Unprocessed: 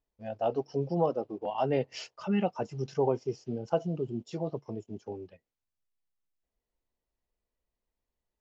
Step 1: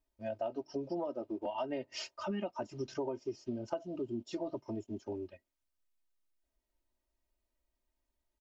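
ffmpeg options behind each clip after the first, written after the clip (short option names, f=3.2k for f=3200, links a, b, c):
-af "aecho=1:1:3.2:0.9,acompressor=threshold=-32dB:ratio=10,volume=-1.5dB"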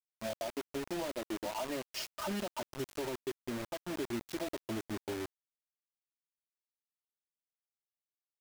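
-af "alimiter=level_in=6.5dB:limit=-24dB:level=0:latency=1:release=177,volume=-6.5dB,acrusher=bits=6:mix=0:aa=0.000001,volume=1.5dB"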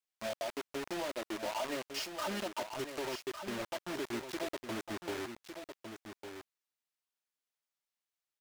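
-filter_complex "[0:a]asplit=2[a][b];[b]highpass=f=720:p=1,volume=8dB,asoftclip=type=tanh:threshold=-28dB[c];[a][c]amix=inputs=2:normalize=0,lowpass=f=7k:p=1,volume=-6dB,aecho=1:1:1155:0.398"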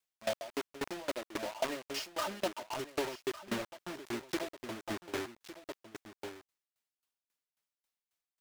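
-af "aeval=exprs='val(0)*pow(10,-22*if(lt(mod(3.7*n/s,1),2*abs(3.7)/1000),1-mod(3.7*n/s,1)/(2*abs(3.7)/1000),(mod(3.7*n/s,1)-2*abs(3.7)/1000)/(1-2*abs(3.7)/1000))/20)':c=same,volume=7.5dB"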